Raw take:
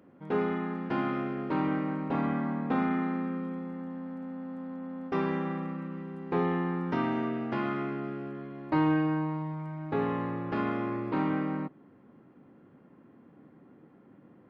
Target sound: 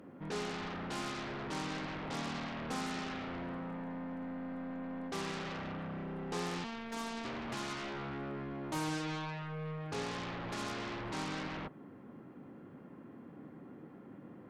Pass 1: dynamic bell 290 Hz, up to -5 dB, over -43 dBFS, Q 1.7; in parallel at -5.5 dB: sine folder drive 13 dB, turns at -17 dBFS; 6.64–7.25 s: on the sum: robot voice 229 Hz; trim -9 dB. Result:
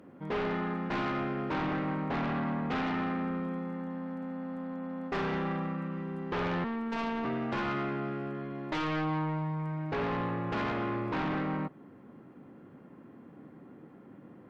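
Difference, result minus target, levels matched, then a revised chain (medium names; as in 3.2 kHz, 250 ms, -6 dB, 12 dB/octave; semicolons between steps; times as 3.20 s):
sine folder: distortion -21 dB
dynamic bell 290 Hz, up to -5 dB, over -43 dBFS, Q 1.7; in parallel at -5.5 dB: sine folder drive 13 dB, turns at -27 dBFS; 6.64–7.25 s: on the sum: robot voice 229 Hz; trim -9 dB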